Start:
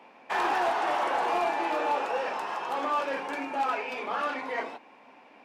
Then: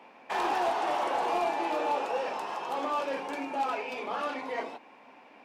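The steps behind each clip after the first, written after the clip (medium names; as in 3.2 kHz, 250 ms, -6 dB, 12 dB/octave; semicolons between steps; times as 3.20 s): dynamic bell 1.6 kHz, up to -6 dB, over -44 dBFS, Q 1.2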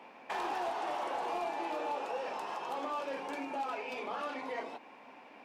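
compression 2:1, threshold -39 dBFS, peak gain reduction 8 dB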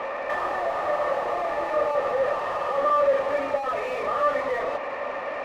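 low-pass that closes with the level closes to 2.9 kHz, closed at -33 dBFS; overdrive pedal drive 32 dB, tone 1.4 kHz, clips at -27 dBFS; small resonant body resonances 570/1200/1800 Hz, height 17 dB, ringing for 35 ms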